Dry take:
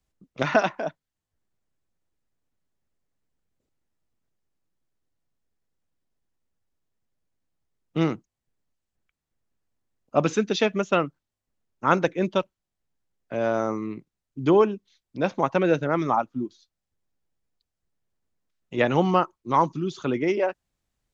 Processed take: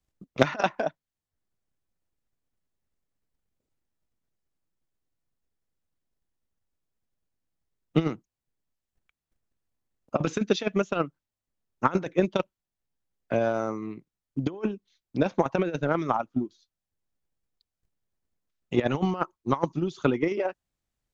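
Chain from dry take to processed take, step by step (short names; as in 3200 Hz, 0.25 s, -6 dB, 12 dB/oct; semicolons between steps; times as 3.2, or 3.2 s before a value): negative-ratio compressor -22 dBFS, ratio -0.5; transient shaper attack +11 dB, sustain -1 dB; gain -6 dB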